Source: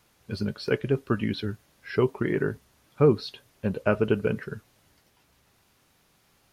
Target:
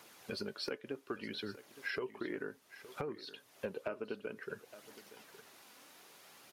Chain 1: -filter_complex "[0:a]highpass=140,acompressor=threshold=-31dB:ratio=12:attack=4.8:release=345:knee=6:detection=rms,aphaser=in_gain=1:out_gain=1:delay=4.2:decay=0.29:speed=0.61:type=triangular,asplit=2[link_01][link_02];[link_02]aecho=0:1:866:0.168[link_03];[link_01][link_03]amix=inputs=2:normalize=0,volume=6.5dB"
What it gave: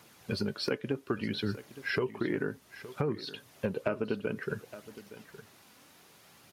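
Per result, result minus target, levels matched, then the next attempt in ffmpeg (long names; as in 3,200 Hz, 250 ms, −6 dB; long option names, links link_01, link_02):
downward compressor: peak gain reduction −7.5 dB; 125 Hz band +7.5 dB
-filter_complex "[0:a]highpass=140,acompressor=threshold=-41dB:ratio=12:attack=4.8:release=345:knee=6:detection=rms,aphaser=in_gain=1:out_gain=1:delay=4.2:decay=0.29:speed=0.61:type=triangular,asplit=2[link_01][link_02];[link_02]aecho=0:1:866:0.168[link_03];[link_01][link_03]amix=inputs=2:normalize=0,volume=6.5dB"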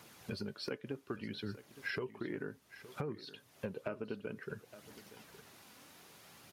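125 Hz band +8.0 dB
-filter_complex "[0:a]highpass=310,acompressor=threshold=-41dB:ratio=12:attack=4.8:release=345:knee=6:detection=rms,aphaser=in_gain=1:out_gain=1:delay=4.2:decay=0.29:speed=0.61:type=triangular,asplit=2[link_01][link_02];[link_02]aecho=0:1:866:0.168[link_03];[link_01][link_03]amix=inputs=2:normalize=0,volume=6.5dB"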